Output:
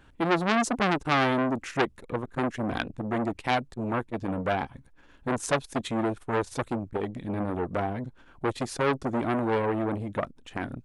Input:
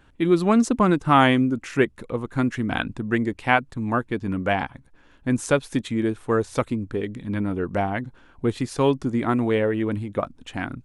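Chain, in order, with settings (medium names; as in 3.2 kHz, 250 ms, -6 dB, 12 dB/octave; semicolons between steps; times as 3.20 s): dynamic bell 1.6 kHz, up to -4 dB, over -35 dBFS, Q 0.87; transformer saturation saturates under 2.2 kHz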